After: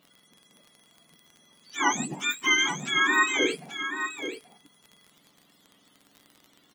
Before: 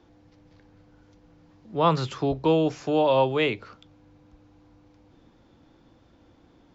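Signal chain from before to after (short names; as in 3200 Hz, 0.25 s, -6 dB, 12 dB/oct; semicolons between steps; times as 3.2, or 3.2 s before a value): spectrum mirrored in octaves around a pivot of 1000 Hz; echo 0.832 s -9 dB; crackle 35/s -38 dBFS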